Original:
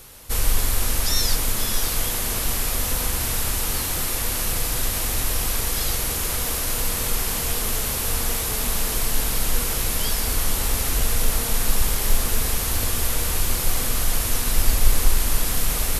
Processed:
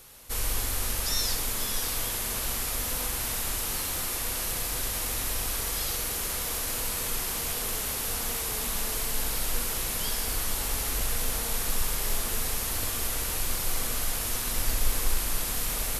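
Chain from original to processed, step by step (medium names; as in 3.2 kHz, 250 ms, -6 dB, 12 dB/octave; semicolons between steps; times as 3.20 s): bass shelf 240 Hz -5 dB; on a send: flutter echo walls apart 11 m, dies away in 0.46 s; on the sum: trim -6 dB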